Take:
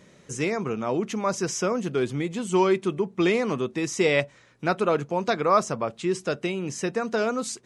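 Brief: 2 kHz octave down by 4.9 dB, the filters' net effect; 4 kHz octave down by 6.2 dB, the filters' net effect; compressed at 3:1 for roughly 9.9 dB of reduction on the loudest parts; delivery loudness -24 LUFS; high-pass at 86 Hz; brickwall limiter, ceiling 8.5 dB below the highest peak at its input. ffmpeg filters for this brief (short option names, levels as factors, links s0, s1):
-af "highpass=86,equalizer=f=2000:t=o:g=-4.5,equalizer=f=4000:t=o:g=-7,acompressor=threshold=0.0282:ratio=3,volume=4.22,alimiter=limit=0.188:level=0:latency=1"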